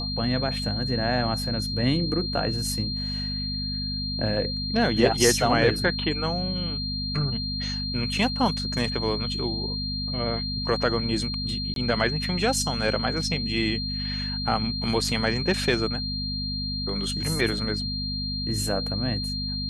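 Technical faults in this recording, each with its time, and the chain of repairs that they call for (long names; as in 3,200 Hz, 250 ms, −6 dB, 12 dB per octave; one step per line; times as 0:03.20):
mains hum 50 Hz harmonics 5 −32 dBFS
whistle 4,200 Hz −30 dBFS
0:11.74–0:11.76: drop-out 22 ms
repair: hum removal 50 Hz, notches 5
notch filter 4,200 Hz, Q 30
repair the gap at 0:11.74, 22 ms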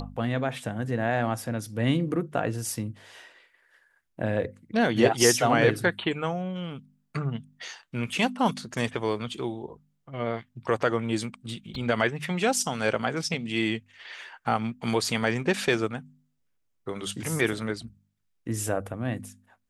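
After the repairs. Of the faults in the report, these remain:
none of them is left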